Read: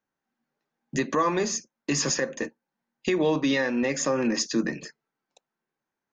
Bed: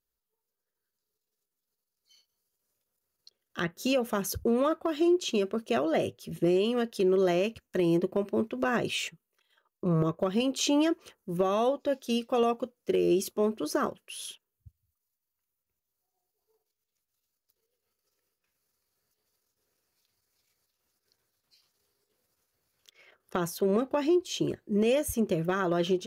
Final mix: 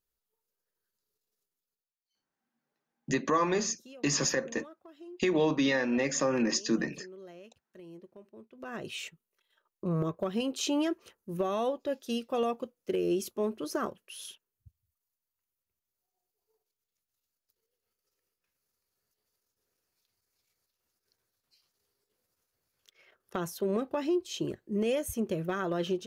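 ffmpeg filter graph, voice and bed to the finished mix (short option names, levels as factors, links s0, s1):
-filter_complex "[0:a]adelay=2150,volume=0.708[s0];[1:a]volume=8.91,afade=t=out:st=1.39:d=0.55:silence=0.0707946,afade=t=in:st=8.49:d=0.76:silence=0.105925[s1];[s0][s1]amix=inputs=2:normalize=0"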